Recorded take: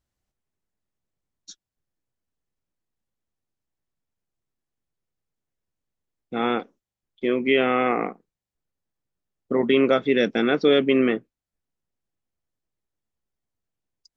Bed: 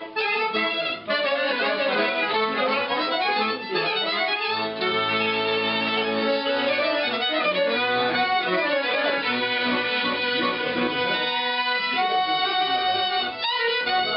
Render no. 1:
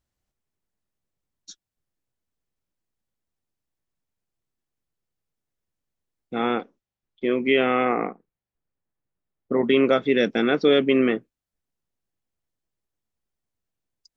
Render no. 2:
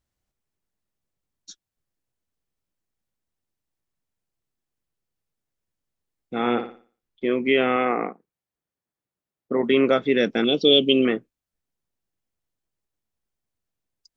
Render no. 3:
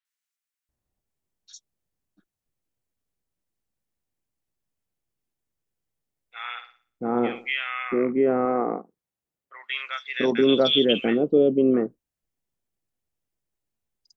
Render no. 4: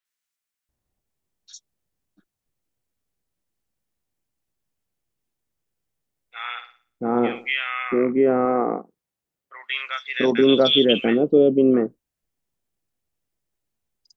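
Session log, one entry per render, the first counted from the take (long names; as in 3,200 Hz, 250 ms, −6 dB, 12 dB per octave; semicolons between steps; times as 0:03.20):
0:06.42–0:07.31: high-frequency loss of the air 81 metres; 0:07.85–0:09.64: low-pass filter 2,400 Hz
0:06.39–0:07.25: flutter between parallel walls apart 10 metres, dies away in 0.41 s; 0:07.76–0:09.71: high-pass filter 160 Hz 6 dB per octave; 0:10.44–0:11.05: drawn EQ curve 550 Hz 0 dB, 1,900 Hz −24 dB, 3,000 Hz +14 dB, 4,400 Hz +4 dB
three-band delay without the direct sound mids, highs, lows 50/690 ms, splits 1,300/4,100 Hz
level +3 dB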